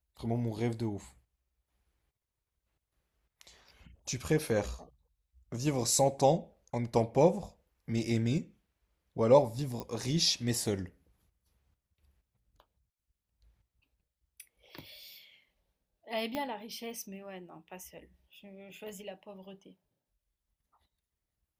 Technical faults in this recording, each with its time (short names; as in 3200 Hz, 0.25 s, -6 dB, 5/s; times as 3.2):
9.8 pop -24 dBFS
16.35 pop -21 dBFS